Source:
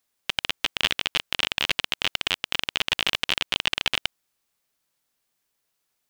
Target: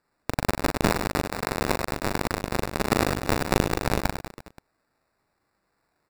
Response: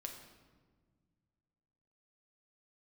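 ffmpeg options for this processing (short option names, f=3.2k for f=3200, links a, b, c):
-filter_complex "[0:a]asettb=1/sr,asplit=3[a][b][c];[a]atrim=end=0.894[d];[b]atrim=start=0.89:end=2.9,asetpts=PTS-STARTPTS,afade=t=in:d=0.004:c=qsin,afade=t=out:st=2.006:d=0.004:c=qsin,highpass=290,lowpass=3.3k[e];[c]atrim=start=2.896[f];[d][e]acrossfade=d=0.004:c1=hsin:c2=qsin[g];[g][f]acrossfade=d=0.004:c1=qsin:c2=hsin,aecho=1:1:40|100|190|325|527.5:0.631|0.398|0.251|0.158|0.1,acrusher=samples=14:mix=1:aa=0.000001"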